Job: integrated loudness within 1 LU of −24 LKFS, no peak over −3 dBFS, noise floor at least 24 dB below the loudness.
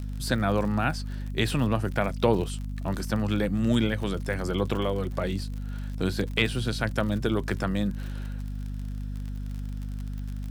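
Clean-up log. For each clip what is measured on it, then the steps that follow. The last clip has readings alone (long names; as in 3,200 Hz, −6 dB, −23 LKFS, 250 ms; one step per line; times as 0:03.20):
crackle rate 54 per second; mains hum 50 Hz; hum harmonics up to 250 Hz; level of the hum −31 dBFS; integrated loudness −28.5 LKFS; sample peak −9.0 dBFS; target loudness −24.0 LKFS
→ click removal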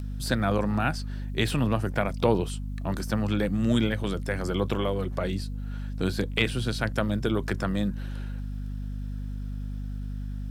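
crackle rate 0.57 per second; mains hum 50 Hz; hum harmonics up to 250 Hz; level of the hum −31 dBFS
→ hum removal 50 Hz, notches 5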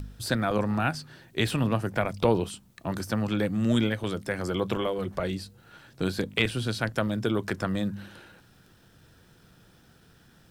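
mains hum none found; integrated loudness −28.5 LKFS; sample peak −10.0 dBFS; target loudness −24.0 LKFS
→ level +4.5 dB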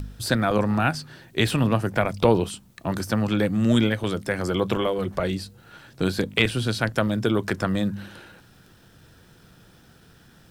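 integrated loudness −24.0 LKFS; sample peak −5.5 dBFS; background noise floor −54 dBFS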